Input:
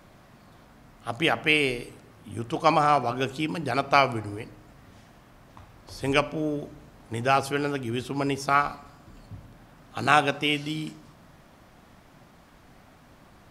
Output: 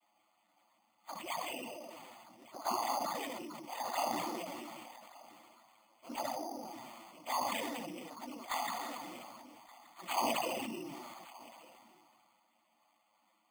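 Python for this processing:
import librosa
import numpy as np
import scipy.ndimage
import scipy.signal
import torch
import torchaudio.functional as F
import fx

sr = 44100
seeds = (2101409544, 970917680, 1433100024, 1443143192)

p1 = fx.partial_stretch(x, sr, pct=117)
p2 = scipy.signal.sosfilt(scipy.signal.butter(4, 330.0, 'highpass', fs=sr, output='sos'), p1)
p3 = fx.noise_vocoder(p2, sr, seeds[0], bands=16)
p4 = fx.fixed_phaser(p3, sr, hz=1600.0, stages=6)
p5 = fx.env_flanger(p4, sr, rest_ms=9.9, full_db=-24.5)
p6 = p5 + fx.echo_single(p5, sr, ms=1174, db=-21.0, dry=0)
p7 = np.repeat(scipy.signal.resample_poly(p6, 1, 8), 8)[:len(p6)]
p8 = fx.sustainer(p7, sr, db_per_s=21.0)
y = p8 * librosa.db_to_amplitude(-5.5)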